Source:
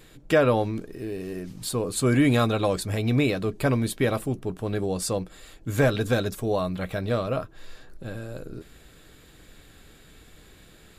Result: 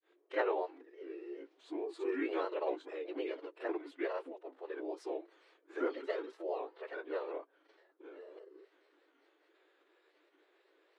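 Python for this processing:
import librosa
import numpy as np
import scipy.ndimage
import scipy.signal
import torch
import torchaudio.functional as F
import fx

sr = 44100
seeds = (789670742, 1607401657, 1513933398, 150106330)

y = scipy.signal.sosfilt(scipy.signal.butter(2, 3600.0, 'lowpass', fs=sr, output='sos'), x)
y = fx.high_shelf(y, sr, hz=2400.0, db=-10.0)
y = fx.pitch_keep_formants(y, sr, semitones=-5.5)
y = fx.brickwall_highpass(y, sr, low_hz=320.0)
y = fx.granulator(y, sr, seeds[0], grain_ms=188.0, per_s=20.0, spray_ms=37.0, spread_st=3)
y = y * 10.0 ** (-6.0 / 20.0)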